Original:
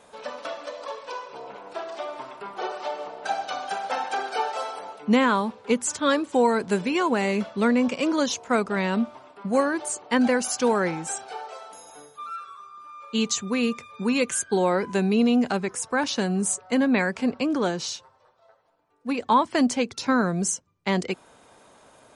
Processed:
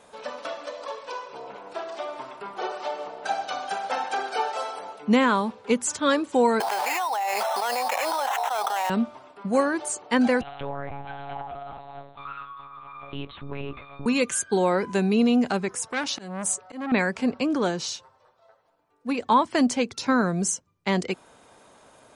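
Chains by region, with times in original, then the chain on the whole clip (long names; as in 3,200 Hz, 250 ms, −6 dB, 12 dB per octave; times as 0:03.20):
0:06.60–0:08.90: sample-rate reduction 4,700 Hz + four-pole ladder high-pass 750 Hz, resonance 80% + envelope flattener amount 100%
0:10.41–0:14.06: parametric band 730 Hz +11.5 dB 0.57 octaves + downward compressor 3 to 1, threshold −33 dBFS + one-pitch LPC vocoder at 8 kHz 140 Hz
0:15.87–0:16.92: high-pass filter 110 Hz 6 dB per octave + volume swells 226 ms + saturating transformer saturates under 1,800 Hz
whole clip: no processing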